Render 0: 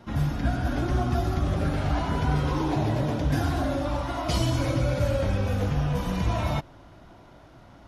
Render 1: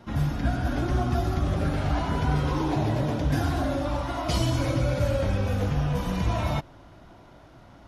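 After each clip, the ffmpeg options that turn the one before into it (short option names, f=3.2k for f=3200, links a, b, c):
-af anull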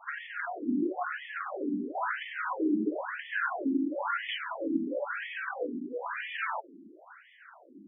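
-filter_complex "[0:a]equalizer=f=160:t=o:w=0.67:g=8,equalizer=f=630:t=o:w=0.67:g=-5,equalizer=f=1.6k:t=o:w=0.67:g=9,asplit=2[a][b];[b]alimiter=limit=-22dB:level=0:latency=1,volume=2dB[c];[a][c]amix=inputs=2:normalize=0,afftfilt=real='re*between(b*sr/1024,270*pow(2500/270,0.5+0.5*sin(2*PI*0.99*pts/sr))/1.41,270*pow(2500/270,0.5+0.5*sin(2*PI*0.99*pts/sr))*1.41)':imag='im*between(b*sr/1024,270*pow(2500/270,0.5+0.5*sin(2*PI*0.99*pts/sr))/1.41,270*pow(2500/270,0.5+0.5*sin(2*PI*0.99*pts/sr))*1.41)':win_size=1024:overlap=0.75,volume=-2.5dB"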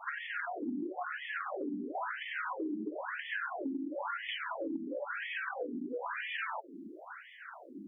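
-af "acompressor=threshold=-40dB:ratio=6,volume=4.5dB"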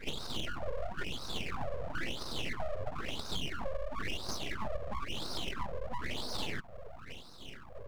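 -af "aeval=exprs='abs(val(0))':c=same,volume=3.5dB"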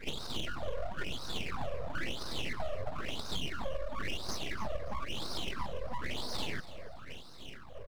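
-af "aecho=1:1:286|572|858:0.158|0.0523|0.0173"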